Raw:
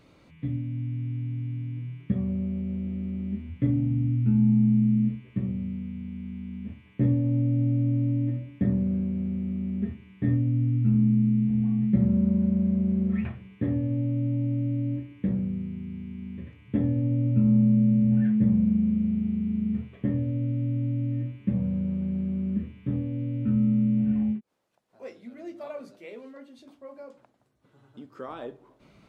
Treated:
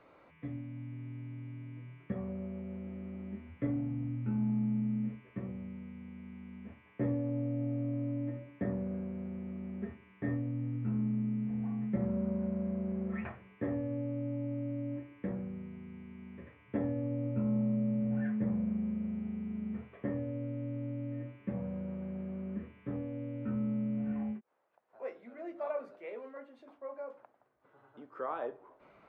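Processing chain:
three-way crossover with the lows and the highs turned down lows −17 dB, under 430 Hz, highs −24 dB, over 2,100 Hz
level +3.5 dB

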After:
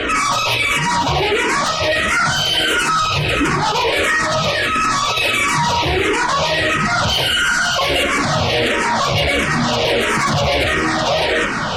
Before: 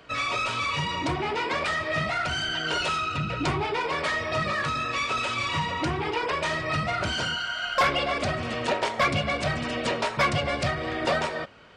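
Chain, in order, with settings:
0:09.87–0:10.30: sign of each sample alone
in parallel at +3 dB: brickwall limiter −27 dBFS, peak gain reduction 10.5 dB
on the sum: Butterworth low-pass 4,100 Hz 36 dB per octave
fuzz pedal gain 45 dB, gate −53 dBFS
gate on every frequency bin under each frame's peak −25 dB strong
delay with a high-pass on its return 167 ms, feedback 84%, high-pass 1,700 Hz, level −13 dB
frequency shifter mixed with the dry sound −1.5 Hz

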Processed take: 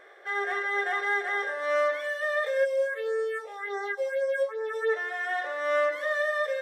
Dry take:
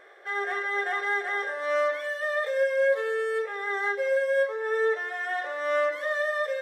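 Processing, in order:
0:02.64–0:04.88: all-pass phaser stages 4, 1 Hz → 3.5 Hz, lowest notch 260–3,000 Hz

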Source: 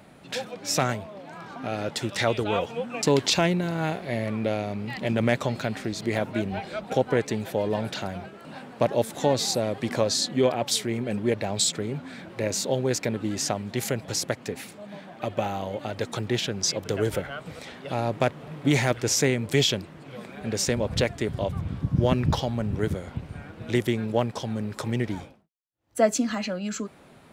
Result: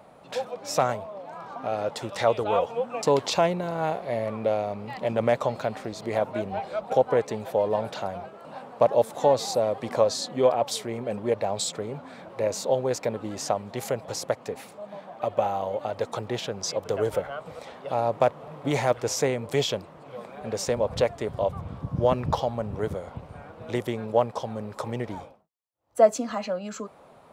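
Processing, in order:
flat-topped bell 750 Hz +10 dB
level −6 dB

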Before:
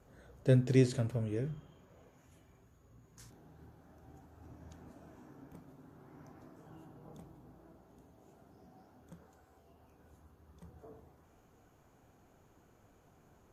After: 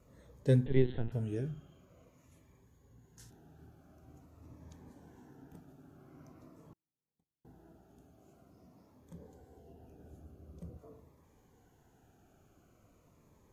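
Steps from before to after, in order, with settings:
0:00.66–0:01.12: linear-prediction vocoder at 8 kHz pitch kept
0:06.73–0:07.45: noise gate −46 dBFS, range −44 dB
0:09.14–0:10.77: low shelf with overshoot 750 Hz +7.5 dB, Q 1.5
phaser whose notches keep moving one way falling 0.46 Hz

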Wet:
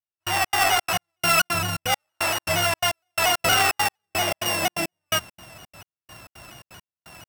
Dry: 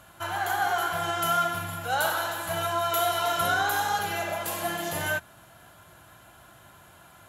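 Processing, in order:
samples sorted by size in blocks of 16 samples
gate pattern "...xx.xxx.x" 170 BPM −60 dB
in parallel at −9 dB: wave folding −27.5 dBFS
on the sum: pitch modulation by a square or saw wave saw down 4.3 Hz, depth 100 cents
level +5.5 dB

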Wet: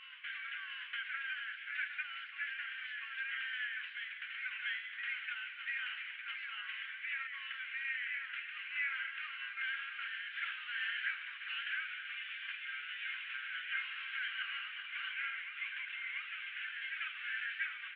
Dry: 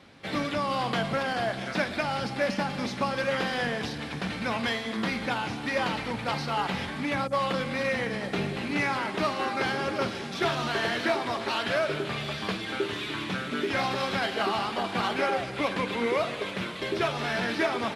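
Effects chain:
elliptic band-pass filter 1,500–3,000 Hz, stop band 50 dB
backwards echo 689 ms −5.5 dB
level −6 dB

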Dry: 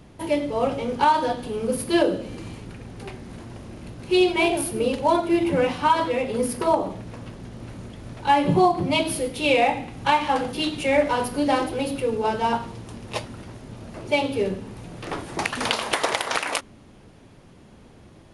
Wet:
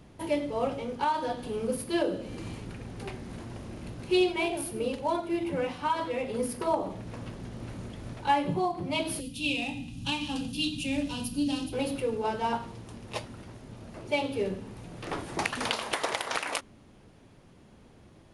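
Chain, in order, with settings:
gain on a spectral selection 0:09.20–0:11.73, 310–2,400 Hz −17 dB
speech leveller within 5 dB 0.5 s
level −7 dB

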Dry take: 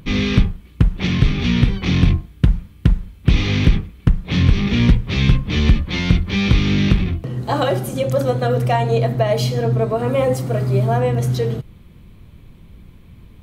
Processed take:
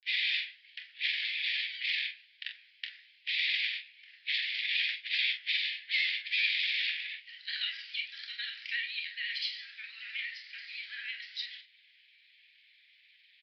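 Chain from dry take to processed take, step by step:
Butterworth high-pass 1,800 Hz 72 dB per octave
in parallel at −1 dB: downward compressor, threshold −38 dBFS, peak gain reduction 14.5 dB
on the sum: granular cloud, spray 36 ms, pitch spread up and down by 0 semitones
pitch vibrato 12 Hz 70 cents
flanger 1.2 Hz, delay 9.6 ms, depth 6.4 ms, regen +79%
on a send: ambience of single reflections 26 ms −8.5 dB, 44 ms −9 dB
on the sum: downsampling to 11,025 Hz

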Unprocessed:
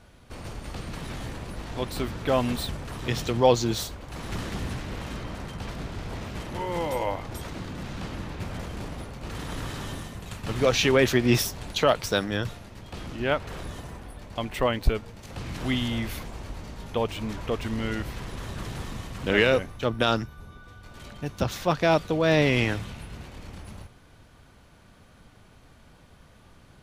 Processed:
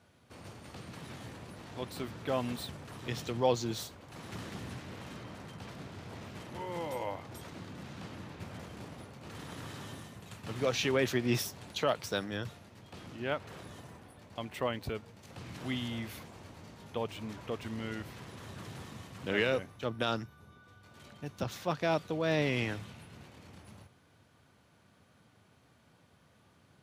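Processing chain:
high-pass filter 87 Hz 24 dB per octave
level −9 dB

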